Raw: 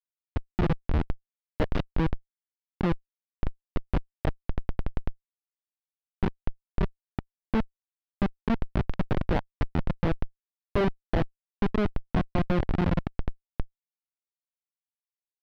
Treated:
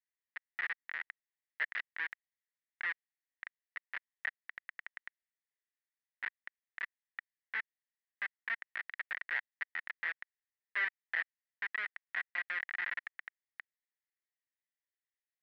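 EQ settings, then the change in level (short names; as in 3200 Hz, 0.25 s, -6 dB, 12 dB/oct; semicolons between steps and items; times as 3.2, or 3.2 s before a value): ladder band-pass 2000 Hz, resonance 80%; bell 1600 Hz +4 dB 0.27 oct; +6.0 dB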